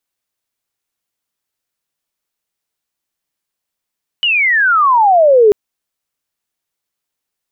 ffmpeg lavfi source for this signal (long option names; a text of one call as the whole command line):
ffmpeg -f lavfi -i "aevalsrc='pow(10,(-10.5+6.5*t/1.29)/20)*sin(2*PI*3000*1.29/log(400/3000)*(exp(log(400/3000)*t/1.29)-1))':duration=1.29:sample_rate=44100" out.wav